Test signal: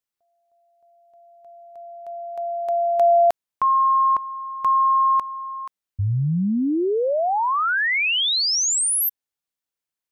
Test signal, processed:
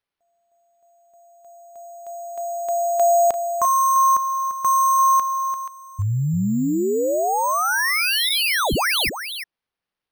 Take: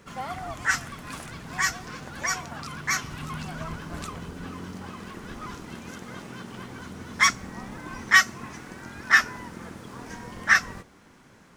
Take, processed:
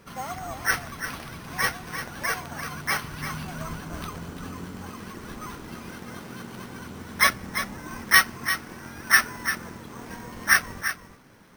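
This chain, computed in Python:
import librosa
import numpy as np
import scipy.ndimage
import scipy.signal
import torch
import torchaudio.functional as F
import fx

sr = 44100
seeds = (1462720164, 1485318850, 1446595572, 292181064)

y = np.repeat(x[::6], 6)[:len(x)]
y = y + 10.0 ** (-9.5 / 20.0) * np.pad(y, (int(344 * sr / 1000.0), 0))[:len(y)]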